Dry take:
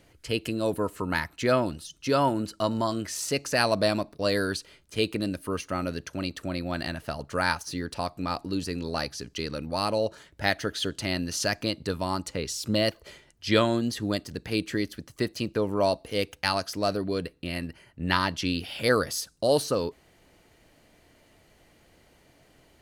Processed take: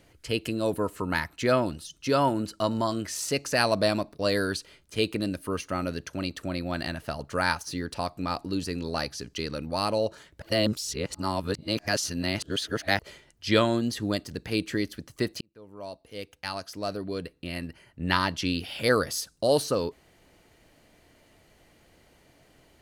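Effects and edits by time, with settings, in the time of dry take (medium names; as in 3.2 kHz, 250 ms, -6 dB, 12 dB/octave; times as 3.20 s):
10.42–12.99 s: reverse
15.41–18.12 s: fade in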